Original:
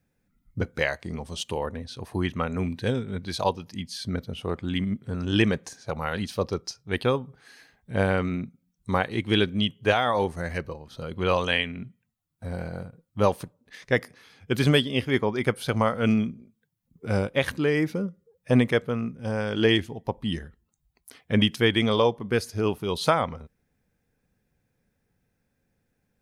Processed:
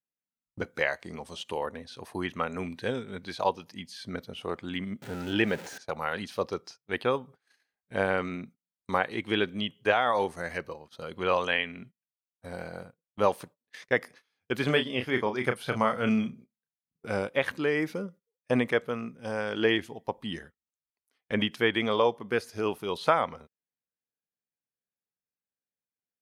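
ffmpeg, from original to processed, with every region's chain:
-filter_complex "[0:a]asettb=1/sr,asplit=3[a][b][c];[a]atrim=end=5.024[d];[b]atrim=start=5.02:end=5.78,asetpts=PTS-STARTPTS,afade=t=in:d=0.004:c=qsin,afade=t=out:st=0.756:d=0.004:c=qsin,aeval=exprs='val(0)+0.5*0.0224*sgn(val(0))':c=same,asuperstop=centerf=1100:order=4:qfactor=5.2[e];[c]atrim=start=5.776[f];[d][e]acrossfade=d=0.004:c1=hsin:c2=qsin[g];[g][f]acrossfade=d=0.004:c1=qsin:c2=hsin,asettb=1/sr,asplit=3[h][i][j];[h]atrim=end=14.654[k];[i]atrim=start=14.65:end=17.06,asetpts=PTS-STARTPTS,afade=t=in:d=0.004:c=qsin,afade=t=out:st=2.406:d=0.004:c=qsin,asubboost=boost=3:cutoff=220,asplit=2[l][m];[m]adelay=32,volume=-8dB[n];[l][n]amix=inputs=2:normalize=0,atrim=end_sample=106281[o];[j]atrim=start=17.056[p];[k][o]acrossfade=d=0.004:c1=hsin:c2=qsin[q];[q][p]acrossfade=d=0.004:c1=qsin:c2=hsin,acrossover=split=2900[r][s];[s]acompressor=threshold=-45dB:ratio=4:attack=1:release=60[t];[r][t]amix=inputs=2:normalize=0,highpass=f=460:p=1,agate=range=-24dB:threshold=-48dB:ratio=16:detection=peak"

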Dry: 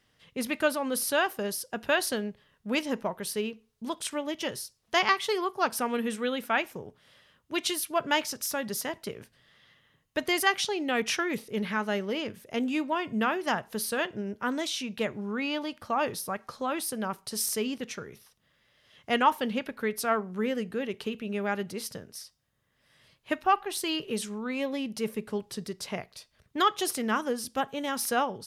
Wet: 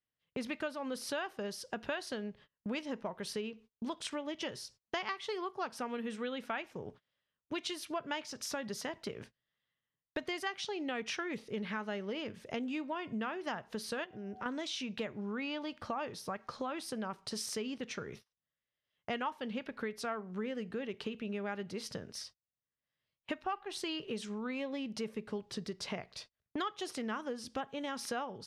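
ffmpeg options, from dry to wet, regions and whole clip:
-filter_complex "[0:a]asettb=1/sr,asplit=3[a][b][c];[a]atrim=end=14.044[d];[b]atrim=start=14.04:end=14.46,asetpts=PTS-STARTPTS,afade=t=in:d=0.004:c=qsin,afade=t=out:st=0.416:d=0.004:c=qsin,aeval=exprs='val(0)+0.00282*sin(2*PI*750*n/s)':c=same,acompressor=threshold=-42dB:ratio=2.5:attack=3.2:release=140:knee=1:detection=peak[e];[c]atrim=start=14.456[f];[d][e]acrossfade=d=0.004:c1=hsin:c2=qsin[g];[g][f]acrossfade=d=0.004:c1=qsin:c2=hsin,agate=range=-30dB:threshold=-51dB:ratio=16:detection=peak,lowpass=5.7k,acompressor=threshold=-41dB:ratio=4,volume=3.5dB"

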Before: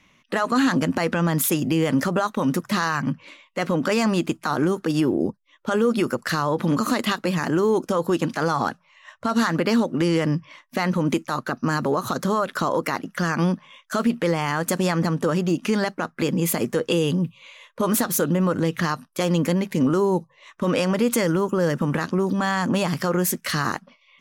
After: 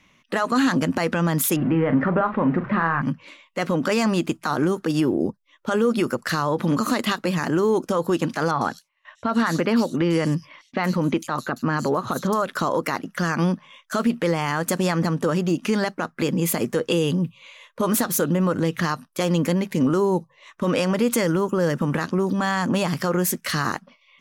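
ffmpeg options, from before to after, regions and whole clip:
-filter_complex "[0:a]asettb=1/sr,asplit=3[a][b][c];[a]atrim=end=1.564[d];[b]atrim=start=1.56:end=3.02,asetpts=PTS-STARTPTS,afade=t=in:d=0.004:c=qsin,afade=t=out:st=1.456:d=0.004:c=qsin,aeval=exprs='val(0)+0.5*0.0316*sgn(val(0))':c=same,lowpass=f=2.1k:w=0.5412,lowpass=f=2.1k:w=1.3066,asplit=2[e][f];[f]adelay=42,volume=-10dB[g];[e][g]amix=inputs=2:normalize=0,atrim=end_sample=64386[h];[c]atrim=start=3.016[i];[d][h]acrossfade=d=0.004:c1=hsin:c2=qsin[j];[j][i]acrossfade=d=0.004:c1=qsin:c2=hsin,asettb=1/sr,asplit=3[k][l][m];[k]atrim=end=8.514[n];[l]atrim=start=8.51:end=12.42,asetpts=PTS-STARTPTS,afade=t=in:d=0.004:c=qsin,afade=t=out:st=3.906:d=0.004:c=qsin,agate=range=-20dB:threshold=-50dB:ratio=16:release=100:detection=peak,acrossover=split=4100[o][p];[p]adelay=100[q];[o][q]amix=inputs=2:normalize=0,atrim=end_sample=172431[r];[m]atrim=start=12.416[s];[n][r]acrossfade=d=0.004:c1=hsin:c2=qsin[t];[t][s]acrossfade=d=0.004:c1=qsin:c2=hsin"

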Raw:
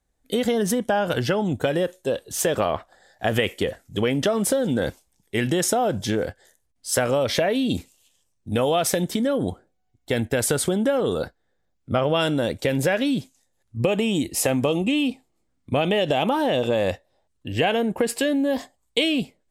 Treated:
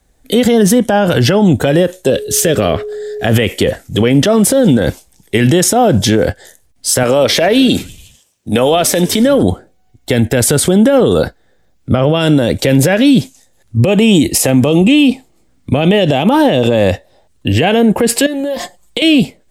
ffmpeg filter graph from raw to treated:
-filter_complex "[0:a]asettb=1/sr,asplit=3[a][b][c];[a]atrim=end=2.104[d];[b]atrim=start=2.1:end=3.27,asetpts=PTS-STARTPTS,afade=t=in:d=0.004:c=qsin,afade=t=out:st=1.166:d=0.004:c=qsin,equalizer=f=910:t=o:w=0.65:g=-13,aeval=exprs='val(0)+0.0126*sin(2*PI*420*n/s)':c=same[e];[c]atrim=start=3.266[f];[d][e]acrossfade=d=0.004:c1=hsin:c2=qsin[g];[g][f]acrossfade=d=0.004:c1=qsin:c2=hsin,asettb=1/sr,asplit=3[h][i][j];[h]atrim=end=7.034[k];[i]atrim=start=7.03:end=9.43,asetpts=PTS-STARTPTS,afade=t=in:d=0.004:c=qsin,afade=t=out:st=2.396:d=0.004:c=qsin,highpass=f=320:p=1,asplit=5[l][m][n][o][p];[m]adelay=95,afreqshift=-81,volume=-23dB[q];[n]adelay=190,afreqshift=-162,volume=-27.6dB[r];[o]adelay=285,afreqshift=-243,volume=-32.2dB[s];[p]adelay=380,afreqshift=-324,volume=-36.7dB[t];[l][q][r][s][t]amix=inputs=5:normalize=0,atrim=end_sample=105840[u];[j]atrim=start=9.426[v];[k][u]acrossfade=d=0.004:c1=hsin:c2=qsin[w];[w][v]acrossfade=d=0.004:c1=qsin:c2=hsin,asettb=1/sr,asplit=3[x][y][z];[x]atrim=end=18.264[aa];[y]atrim=start=18.26:end=19.02,asetpts=PTS-STARTPTS,afade=t=in:d=0.004:c=qsin,afade=t=out:st=0.756:d=0.004:c=qsin,aecho=1:1:5.7:0.78,atrim=end_sample=33516,acompressor=threshold=-32dB:ratio=10:attack=3.2:release=140:knee=1:detection=peak[ab];[z]atrim=start=19.016[ac];[aa][ab]acrossfade=d=0.004:c1=hsin:c2=qsin[ad];[ad][ac]acrossfade=d=0.004:c1=qsin:c2=hsin,equalizer=f=1.1k:w=1.5:g=-2.5,acrossover=split=310[ae][af];[af]acompressor=threshold=-25dB:ratio=6[ag];[ae][ag]amix=inputs=2:normalize=0,alimiter=level_in=19dB:limit=-1dB:release=50:level=0:latency=1,volume=-1dB"

